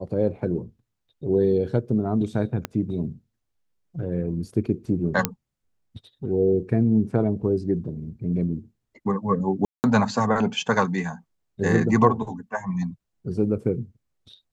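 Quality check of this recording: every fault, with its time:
2.65 s: pop -12 dBFS
5.25 s: pop -4 dBFS
9.65–9.84 s: dropout 189 ms

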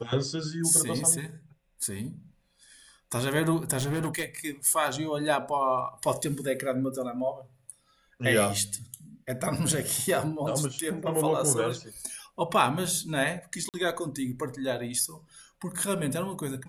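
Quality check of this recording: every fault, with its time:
3.78–4.39 s: clipped -25.5 dBFS
13.69–13.74 s: dropout 48 ms

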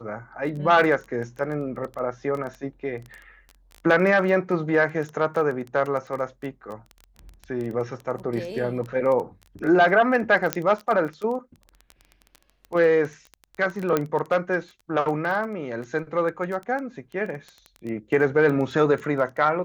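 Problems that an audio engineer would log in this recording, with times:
crackle 13 per s -29 dBFS
10.53 s: pop -6 dBFS
13.97 s: pop -9 dBFS

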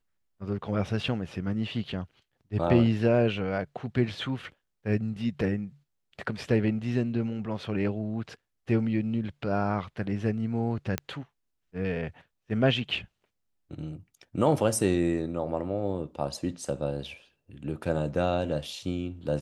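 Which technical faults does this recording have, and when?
10.98 s: pop -12 dBFS

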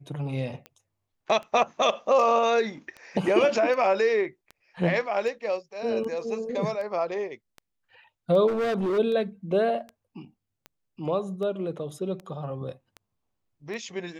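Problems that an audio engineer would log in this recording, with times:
tick 78 rpm -26 dBFS
8.47–8.99 s: clipped -23.5 dBFS

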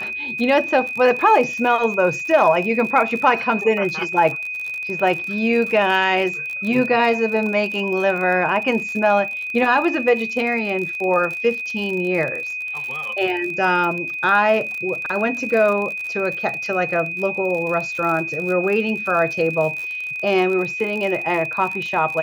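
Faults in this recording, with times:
crackle 51 per s -26 dBFS
whine 2.5 kHz -25 dBFS

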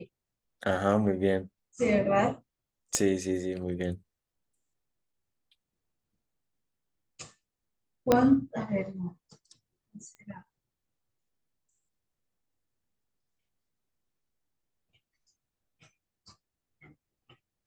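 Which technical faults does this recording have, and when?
2.95 s: pop -12 dBFS
8.12 s: pop -8 dBFS
10.15 s: pop -36 dBFS

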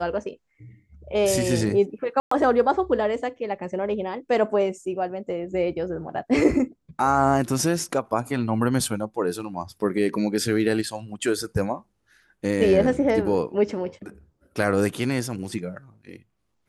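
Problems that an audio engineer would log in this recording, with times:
2.20–2.31 s: dropout 114 ms

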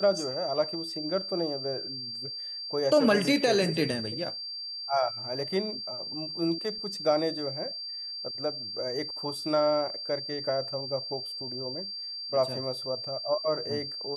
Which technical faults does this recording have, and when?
whine 4.7 kHz -35 dBFS

